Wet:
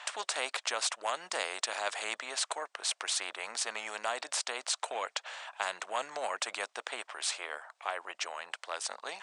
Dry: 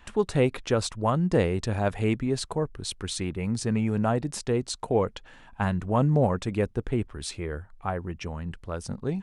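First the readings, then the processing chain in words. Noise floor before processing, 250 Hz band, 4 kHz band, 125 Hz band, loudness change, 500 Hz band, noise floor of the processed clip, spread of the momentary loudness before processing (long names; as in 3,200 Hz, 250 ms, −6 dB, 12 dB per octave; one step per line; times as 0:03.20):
−52 dBFS, −30.0 dB, +3.0 dB, below −40 dB, −7.5 dB, −14.0 dB, −74 dBFS, 11 LU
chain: tape wow and flutter 28 cents
Chebyshev band-pass filter 630–8,700 Hz, order 4
every bin compressed towards the loudest bin 2 to 1
level +2 dB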